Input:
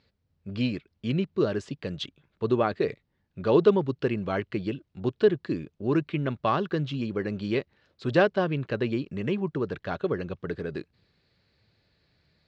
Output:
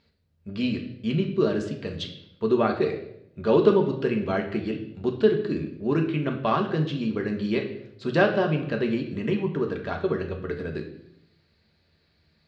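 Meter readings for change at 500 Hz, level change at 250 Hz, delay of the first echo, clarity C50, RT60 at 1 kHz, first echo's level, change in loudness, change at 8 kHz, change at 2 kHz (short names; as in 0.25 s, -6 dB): +2.0 dB, +3.0 dB, none, 8.5 dB, 0.70 s, none, +2.0 dB, n/a, +2.5 dB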